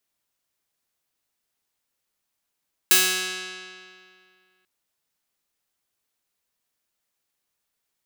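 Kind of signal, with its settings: plucked string F#3, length 1.74 s, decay 2.30 s, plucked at 0.3, bright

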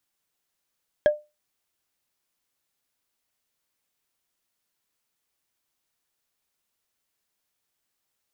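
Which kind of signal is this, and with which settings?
wood hit, lowest mode 599 Hz, decay 0.24 s, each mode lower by 10 dB, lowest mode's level -11 dB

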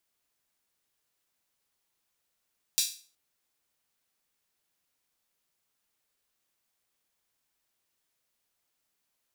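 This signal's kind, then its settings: open hi-hat length 0.37 s, high-pass 4200 Hz, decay 0.39 s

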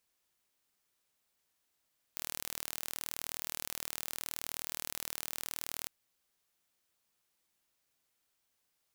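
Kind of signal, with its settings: pulse train 39.2/s, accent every 0, -11 dBFS 3.70 s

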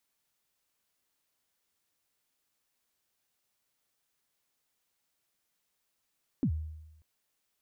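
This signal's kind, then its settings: kick drum length 0.59 s, from 310 Hz, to 78 Hz, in 79 ms, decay 0.97 s, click off, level -23 dB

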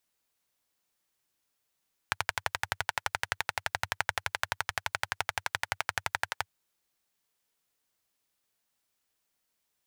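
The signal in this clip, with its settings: single-cylinder engine model, steady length 4.34 s, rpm 1400, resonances 96/900/1500 Hz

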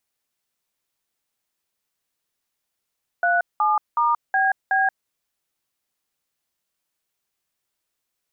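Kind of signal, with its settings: DTMF "37*BB", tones 0.179 s, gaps 0.191 s, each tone -19 dBFS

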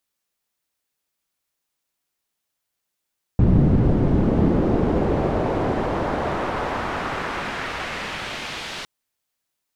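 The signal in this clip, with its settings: swept filtered noise white, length 5.46 s lowpass, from 170 Hz, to 3700 Hz, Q 0.97, exponential, gain ramp -31 dB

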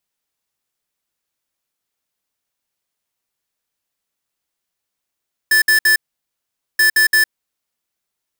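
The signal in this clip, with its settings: beep pattern square 1750 Hz, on 0.11 s, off 0.06 s, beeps 3, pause 0.83 s, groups 2, -12 dBFS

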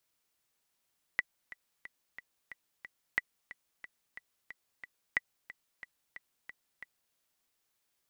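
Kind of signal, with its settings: metronome 181 bpm, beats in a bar 6, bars 3, 1970 Hz, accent 17.5 dB -14.5 dBFS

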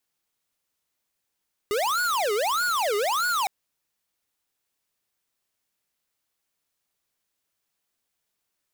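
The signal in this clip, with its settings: siren wail 405–1460 Hz 1.6/s square -24.5 dBFS 1.76 s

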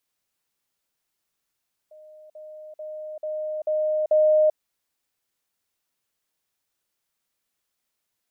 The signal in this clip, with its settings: level ladder 616 Hz -44.5 dBFS, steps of 6 dB, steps 6, 0.39 s 0.05 s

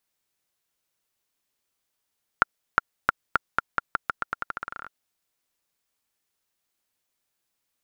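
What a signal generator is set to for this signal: bouncing ball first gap 0.36 s, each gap 0.86, 1390 Hz, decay 18 ms -1.5 dBFS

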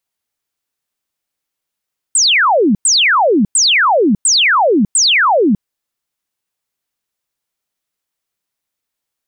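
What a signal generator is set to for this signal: burst of laser zaps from 8800 Hz, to 180 Hz, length 0.60 s sine, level -8 dB, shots 5, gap 0.10 s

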